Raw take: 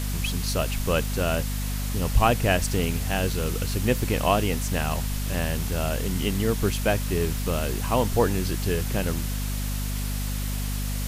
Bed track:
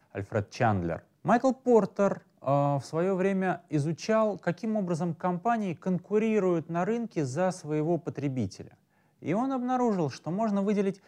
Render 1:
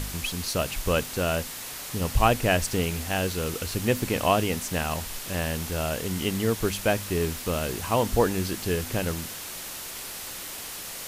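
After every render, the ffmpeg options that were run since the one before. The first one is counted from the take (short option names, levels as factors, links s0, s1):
-af "bandreject=f=50:t=h:w=4,bandreject=f=100:t=h:w=4,bandreject=f=150:t=h:w=4,bandreject=f=200:t=h:w=4,bandreject=f=250:t=h:w=4"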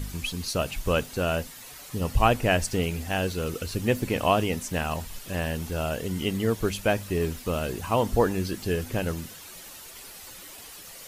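-af "afftdn=nr=10:nf=-38"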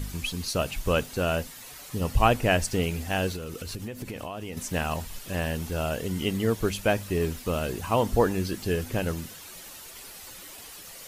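-filter_complex "[0:a]asettb=1/sr,asplit=3[s0][s1][s2];[s0]atrim=end=3.364[s3];[s1]atrim=start=3.36:end=4.57,asetpts=PTS-STARTPTS,afade=t=in:d=0.004:c=qsin,afade=t=out:st=1.206:d=0.004:c=qsin,acompressor=threshold=0.0282:ratio=12:attack=3.2:release=140:knee=1:detection=peak[s4];[s2]atrim=start=4.566[s5];[s3][s4]acrossfade=d=0.004:c1=hsin:c2=qsin[s6];[s6][s5]acrossfade=d=0.004:c1=qsin:c2=hsin"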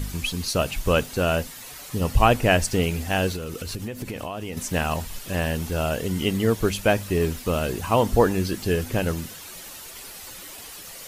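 -af "volume=1.58,alimiter=limit=0.708:level=0:latency=1"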